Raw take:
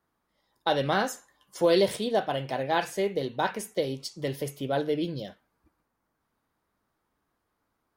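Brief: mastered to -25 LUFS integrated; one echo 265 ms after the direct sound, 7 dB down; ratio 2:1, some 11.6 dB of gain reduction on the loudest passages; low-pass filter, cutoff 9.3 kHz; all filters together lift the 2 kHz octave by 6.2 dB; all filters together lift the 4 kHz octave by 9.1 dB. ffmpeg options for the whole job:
-af "lowpass=9300,equalizer=f=2000:t=o:g=6.5,equalizer=f=4000:t=o:g=9,acompressor=threshold=0.0126:ratio=2,aecho=1:1:265:0.447,volume=3.16"

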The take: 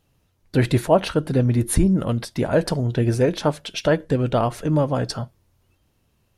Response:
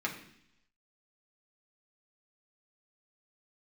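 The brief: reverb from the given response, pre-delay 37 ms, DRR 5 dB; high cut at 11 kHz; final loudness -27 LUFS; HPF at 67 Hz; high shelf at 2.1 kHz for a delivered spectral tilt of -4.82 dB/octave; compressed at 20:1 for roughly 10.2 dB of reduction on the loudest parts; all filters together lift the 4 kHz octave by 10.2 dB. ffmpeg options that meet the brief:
-filter_complex "[0:a]highpass=67,lowpass=11000,highshelf=f=2100:g=6.5,equalizer=f=4000:t=o:g=6.5,acompressor=threshold=0.112:ratio=20,asplit=2[s0][s1];[1:a]atrim=start_sample=2205,adelay=37[s2];[s1][s2]afir=irnorm=-1:irlink=0,volume=0.299[s3];[s0][s3]amix=inputs=2:normalize=0,volume=0.668"

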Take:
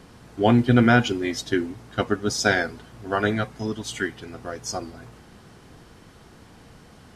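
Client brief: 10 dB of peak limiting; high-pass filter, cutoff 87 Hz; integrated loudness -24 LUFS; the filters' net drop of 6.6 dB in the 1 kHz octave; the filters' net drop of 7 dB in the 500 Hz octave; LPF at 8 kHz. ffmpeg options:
-af "highpass=87,lowpass=8000,equalizer=f=500:t=o:g=-8,equalizer=f=1000:t=o:g=-7,volume=2.11,alimiter=limit=0.299:level=0:latency=1"

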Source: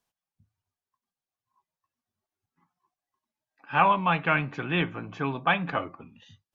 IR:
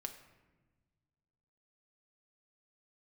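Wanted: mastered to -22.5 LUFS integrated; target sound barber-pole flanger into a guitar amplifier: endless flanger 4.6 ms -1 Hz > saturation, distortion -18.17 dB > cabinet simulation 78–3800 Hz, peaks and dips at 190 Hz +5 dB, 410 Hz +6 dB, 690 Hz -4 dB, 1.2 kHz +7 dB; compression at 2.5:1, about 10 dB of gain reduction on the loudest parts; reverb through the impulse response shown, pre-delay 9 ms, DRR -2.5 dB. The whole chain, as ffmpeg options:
-filter_complex "[0:a]acompressor=threshold=0.0251:ratio=2.5,asplit=2[s0][s1];[1:a]atrim=start_sample=2205,adelay=9[s2];[s1][s2]afir=irnorm=-1:irlink=0,volume=1.78[s3];[s0][s3]amix=inputs=2:normalize=0,asplit=2[s4][s5];[s5]adelay=4.6,afreqshift=-1[s6];[s4][s6]amix=inputs=2:normalize=1,asoftclip=threshold=0.0841,highpass=78,equalizer=f=190:t=q:w=4:g=5,equalizer=f=410:t=q:w=4:g=6,equalizer=f=690:t=q:w=4:g=-4,equalizer=f=1200:t=q:w=4:g=7,lowpass=f=3800:w=0.5412,lowpass=f=3800:w=1.3066,volume=2.82"

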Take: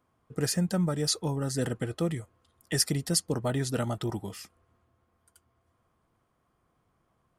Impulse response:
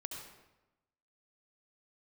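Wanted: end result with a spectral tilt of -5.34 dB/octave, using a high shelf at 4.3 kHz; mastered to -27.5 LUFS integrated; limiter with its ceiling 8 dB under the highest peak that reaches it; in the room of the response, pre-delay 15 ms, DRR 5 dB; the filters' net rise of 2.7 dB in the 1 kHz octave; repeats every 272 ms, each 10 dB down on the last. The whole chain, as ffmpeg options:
-filter_complex "[0:a]equalizer=f=1000:t=o:g=4,highshelf=f=4300:g=-4.5,alimiter=limit=0.0708:level=0:latency=1,aecho=1:1:272|544|816|1088:0.316|0.101|0.0324|0.0104,asplit=2[s0][s1];[1:a]atrim=start_sample=2205,adelay=15[s2];[s1][s2]afir=irnorm=-1:irlink=0,volume=0.668[s3];[s0][s3]amix=inputs=2:normalize=0,volume=1.68"

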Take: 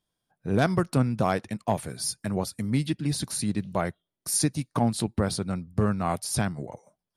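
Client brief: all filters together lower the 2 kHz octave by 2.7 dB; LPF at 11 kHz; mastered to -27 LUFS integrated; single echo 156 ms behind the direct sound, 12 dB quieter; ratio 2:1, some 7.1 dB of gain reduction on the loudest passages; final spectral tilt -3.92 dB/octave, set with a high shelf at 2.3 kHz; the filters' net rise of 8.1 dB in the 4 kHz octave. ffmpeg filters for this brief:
-af "lowpass=11000,equalizer=f=2000:t=o:g=-9,highshelf=f=2300:g=8.5,equalizer=f=4000:t=o:g=3.5,acompressor=threshold=0.0398:ratio=2,aecho=1:1:156:0.251,volume=1.33"

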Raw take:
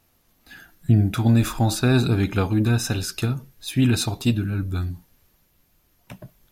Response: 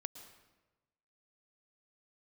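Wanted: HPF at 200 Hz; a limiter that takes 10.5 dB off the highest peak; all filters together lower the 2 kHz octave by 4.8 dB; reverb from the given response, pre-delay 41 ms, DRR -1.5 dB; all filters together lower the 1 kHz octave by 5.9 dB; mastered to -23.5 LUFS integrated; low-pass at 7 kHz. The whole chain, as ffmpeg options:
-filter_complex "[0:a]highpass=200,lowpass=7000,equalizer=f=1000:t=o:g=-7.5,equalizer=f=2000:t=o:g=-4,alimiter=limit=0.112:level=0:latency=1,asplit=2[s0][s1];[1:a]atrim=start_sample=2205,adelay=41[s2];[s1][s2]afir=irnorm=-1:irlink=0,volume=1.68[s3];[s0][s3]amix=inputs=2:normalize=0,volume=1.33"

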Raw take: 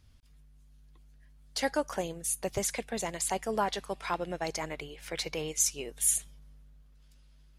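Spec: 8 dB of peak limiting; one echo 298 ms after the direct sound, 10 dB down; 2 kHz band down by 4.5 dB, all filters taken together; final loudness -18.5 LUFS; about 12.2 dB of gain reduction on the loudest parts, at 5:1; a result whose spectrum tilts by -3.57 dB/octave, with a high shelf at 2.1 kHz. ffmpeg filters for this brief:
-af "equalizer=f=2000:t=o:g=-8.5,highshelf=f=2100:g=5,acompressor=threshold=0.0251:ratio=5,alimiter=level_in=1.5:limit=0.0631:level=0:latency=1,volume=0.668,aecho=1:1:298:0.316,volume=10.6"

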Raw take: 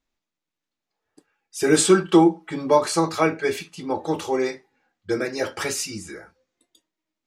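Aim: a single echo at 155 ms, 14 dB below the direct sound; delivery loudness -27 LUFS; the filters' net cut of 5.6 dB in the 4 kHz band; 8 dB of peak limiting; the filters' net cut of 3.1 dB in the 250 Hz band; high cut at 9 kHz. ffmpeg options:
-af "lowpass=9000,equalizer=f=250:t=o:g=-5,equalizer=f=4000:t=o:g=-7,alimiter=limit=0.211:level=0:latency=1,aecho=1:1:155:0.2,volume=0.944"

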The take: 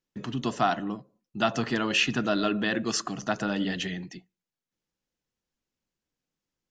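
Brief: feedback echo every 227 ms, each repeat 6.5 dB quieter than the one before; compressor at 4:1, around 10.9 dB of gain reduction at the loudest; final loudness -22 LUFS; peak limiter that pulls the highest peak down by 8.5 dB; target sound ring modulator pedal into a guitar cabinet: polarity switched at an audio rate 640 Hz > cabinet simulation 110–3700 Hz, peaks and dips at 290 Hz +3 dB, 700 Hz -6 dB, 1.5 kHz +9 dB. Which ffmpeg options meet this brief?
-af "acompressor=threshold=0.0224:ratio=4,alimiter=level_in=1.33:limit=0.0631:level=0:latency=1,volume=0.75,aecho=1:1:227|454|681|908|1135|1362:0.473|0.222|0.105|0.0491|0.0231|0.0109,aeval=exprs='val(0)*sgn(sin(2*PI*640*n/s))':c=same,highpass=110,equalizer=f=290:t=q:w=4:g=3,equalizer=f=700:t=q:w=4:g=-6,equalizer=f=1500:t=q:w=4:g=9,lowpass=f=3700:w=0.5412,lowpass=f=3700:w=1.3066,volume=5.31"

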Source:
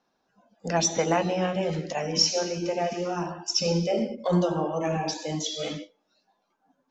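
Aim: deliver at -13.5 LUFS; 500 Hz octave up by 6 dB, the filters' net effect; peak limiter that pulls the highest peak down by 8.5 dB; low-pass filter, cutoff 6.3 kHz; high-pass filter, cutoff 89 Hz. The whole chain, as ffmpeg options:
-af "highpass=89,lowpass=6300,equalizer=f=500:t=o:g=7,volume=4.47,alimiter=limit=0.668:level=0:latency=1"

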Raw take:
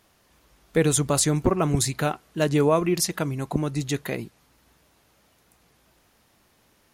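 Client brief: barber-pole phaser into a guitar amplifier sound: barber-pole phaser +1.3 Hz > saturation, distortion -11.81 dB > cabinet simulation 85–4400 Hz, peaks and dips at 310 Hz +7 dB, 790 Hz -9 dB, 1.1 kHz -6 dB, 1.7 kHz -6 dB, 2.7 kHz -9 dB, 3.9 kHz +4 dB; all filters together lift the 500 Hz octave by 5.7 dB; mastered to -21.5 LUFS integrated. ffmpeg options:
-filter_complex "[0:a]equalizer=f=500:t=o:g=7,asplit=2[s0][s1];[s1]afreqshift=1.3[s2];[s0][s2]amix=inputs=2:normalize=1,asoftclip=threshold=0.158,highpass=85,equalizer=f=310:t=q:w=4:g=7,equalizer=f=790:t=q:w=4:g=-9,equalizer=f=1100:t=q:w=4:g=-6,equalizer=f=1700:t=q:w=4:g=-6,equalizer=f=2700:t=q:w=4:g=-9,equalizer=f=3900:t=q:w=4:g=4,lowpass=f=4400:w=0.5412,lowpass=f=4400:w=1.3066,volume=1.58"

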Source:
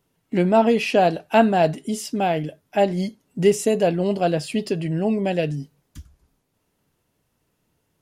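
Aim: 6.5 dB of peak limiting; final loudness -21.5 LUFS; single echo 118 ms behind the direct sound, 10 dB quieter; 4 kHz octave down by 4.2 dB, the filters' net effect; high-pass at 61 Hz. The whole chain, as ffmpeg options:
-af "highpass=61,equalizer=f=4000:t=o:g=-6.5,alimiter=limit=0.299:level=0:latency=1,aecho=1:1:118:0.316,volume=1.12"

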